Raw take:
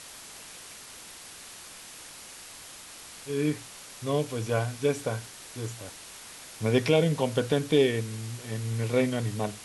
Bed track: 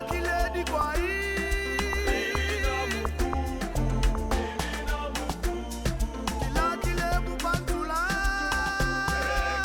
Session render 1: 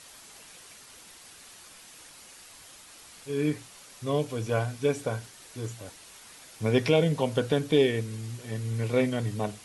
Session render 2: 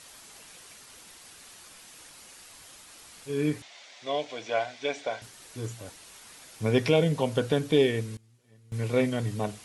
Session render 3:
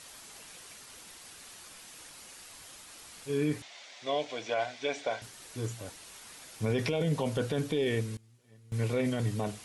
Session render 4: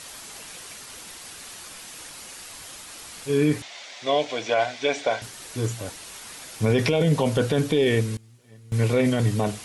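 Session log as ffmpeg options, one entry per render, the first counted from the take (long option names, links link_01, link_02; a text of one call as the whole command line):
ffmpeg -i in.wav -af "afftdn=noise_reduction=6:noise_floor=-46" out.wav
ffmpeg -i in.wav -filter_complex "[0:a]asettb=1/sr,asplit=3[link_01][link_02][link_03];[link_01]atrim=end=3.624[link_04];[link_02]atrim=start=3.62:end=5.22,asetpts=PTS-STARTPTS,afade=type=in:duration=0.004:curve=qsin,afade=type=out:start_time=1.596:duration=0.004:curve=qsin,highpass=440,equalizer=frequency=450:width_type=q:width=4:gain=-5,equalizer=frequency=670:width_type=q:width=4:gain=8,equalizer=frequency=1200:width_type=q:width=4:gain=-5,equalizer=frequency=2100:width_type=q:width=4:gain=8,equalizer=frequency=3500:width_type=q:width=4:gain=6,lowpass=frequency=6300:width=0.5412,lowpass=frequency=6300:width=1.3066[link_05];[link_03]atrim=start=5.216[link_06];[link_04][link_05]acrossfade=duration=0.004:curve1=hsin:curve2=qsin[link_07];[link_07][link_06]acrossfade=duration=0.004:curve1=qsin:curve2=hsin,asplit=3[link_08][link_09][link_10];[link_08]atrim=end=8.17,asetpts=PTS-STARTPTS,afade=type=out:start_time=7.91:duration=0.26:curve=log:silence=0.0630957[link_11];[link_09]atrim=start=8.17:end=8.72,asetpts=PTS-STARTPTS,volume=-24dB[link_12];[link_10]atrim=start=8.72,asetpts=PTS-STARTPTS,afade=type=in:duration=0.26:curve=log:silence=0.0630957[link_13];[link_11][link_12][link_13]concat=n=3:v=0:a=1" out.wav
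ffmpeg -i in.wav -af "alimiter=limit=-21dB:level=0:latency=1:release=16" out.wav
ffmpeg -i in.wav -af "volume=9dB" out.wav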